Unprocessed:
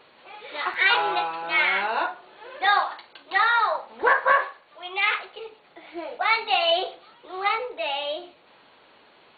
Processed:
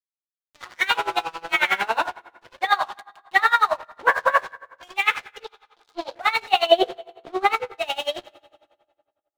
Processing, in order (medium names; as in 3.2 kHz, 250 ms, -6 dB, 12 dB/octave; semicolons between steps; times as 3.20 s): fade-in on the opening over 1.94 s; 6.66–7.53 s: peaking EQ 250 Hz +12 dB 2.1 oct; crossover distortion -39.5 dBFS; reverberation RT60 1.8 s, pre-delay 5 ms, DRR 16.5 dB; level rider gain up to 12.5 dB; 5.44–6.15 s: graphic EQ 125/1000/2000/4000 Hz -11/+6/-11/+12 dB; logarithmic tremolo 11 Hz, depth 22 dB